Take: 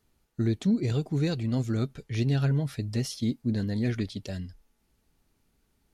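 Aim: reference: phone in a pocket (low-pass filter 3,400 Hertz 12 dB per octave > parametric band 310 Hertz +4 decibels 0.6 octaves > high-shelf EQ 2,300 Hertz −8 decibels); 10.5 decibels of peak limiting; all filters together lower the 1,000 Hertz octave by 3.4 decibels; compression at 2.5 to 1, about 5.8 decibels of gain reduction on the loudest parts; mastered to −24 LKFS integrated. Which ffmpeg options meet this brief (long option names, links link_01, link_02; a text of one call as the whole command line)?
ffmpeg -i in.wav -af "equalizer=frequency=1000:width_type=o:gain=-3.5,acompressor=threshold=-30dB:ratio=2.5,alimiter=level_in=7.5dB:limit=-24dB:level=0:latency=1,volume=-7.5dB,lowpass=3400,equalizer=frequency=310:width_type=o:width=0.6:gain=4,highshelf=frequency=2300:gain=-8,volume=15dB" out.wav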